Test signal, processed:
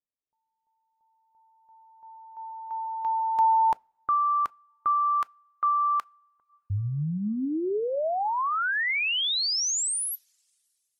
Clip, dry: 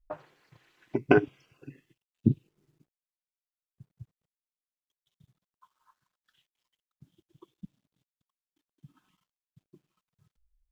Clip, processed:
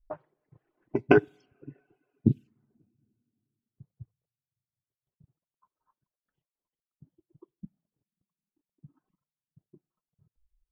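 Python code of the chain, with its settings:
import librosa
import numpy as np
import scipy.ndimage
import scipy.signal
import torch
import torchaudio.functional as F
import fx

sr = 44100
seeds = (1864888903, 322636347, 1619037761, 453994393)

y = fx.env_lowpass(x, sr, base_hz=600.0, full_db=-24.0)
y = fx.rev_double_slope(y, sr, seeds[0], early_s=0.46, late_s=2.5, knee_db=-18, drr_db=17.5)
y = fx.dereverb_blind(y, sr, rt60_s=0.6)
y = y * 10.0 ** (1.0 / 20.0)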